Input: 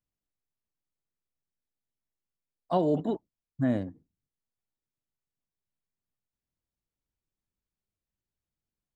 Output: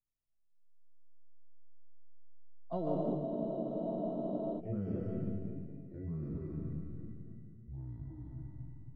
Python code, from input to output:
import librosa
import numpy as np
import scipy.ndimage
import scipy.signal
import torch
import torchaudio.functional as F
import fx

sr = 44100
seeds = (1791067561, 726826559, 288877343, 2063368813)

p1 = fx.low_shelf(x, sr, hz=390.0, db=9.0)
p2 = fx.notch(p1, sr, hz=1700.0, q=16.0)
p3 = p2 + fx.echo_feedback(p2, sr, ms=139, feedback_pct=28, wet_db=-6.5, dry=0)
p4 = fx.rev_freeverb(p3, sr, rt60_s=1.3, hf_ratio=0.8, predelay_ms=100, drr_db=-1.0)
p5 = fx.echo_pitch(p4, sr, ms=162, semitones=-4, count=3, db_per_echo=-3.0)
p6 = fx.high_shelf(p5, sr, hz=2200.0, db=-10.0)
p7 = fx.comb_fb(p6, sr, f0_hz=660.0, decay_s=0.37, harmonics='all', damping=0.0, mix_pct=90)
p8 = fx.spec_freeze(p7, sr, seeds[0], at_s=3.27, hold_s=1.31)
y = F.gain(torch.from_numpy(p8), 2.5).numpy()